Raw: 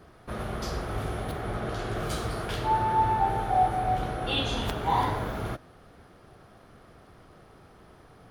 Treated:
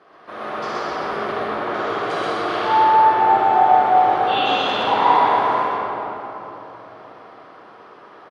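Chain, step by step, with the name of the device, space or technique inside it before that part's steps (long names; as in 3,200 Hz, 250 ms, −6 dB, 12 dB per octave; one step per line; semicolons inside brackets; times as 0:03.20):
station announcement (band-pass filter 430–3,800 Hz; parametric band 1,100 Hz +5 dB 0.24 octaves; loudspeakers that aren't time-aligned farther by 43 metres −2 dB, 82 metres −12 dB; convolution reverb RT60 3.6 s, pre-delay 43 ms, DRR −6 dB)
level +3 dB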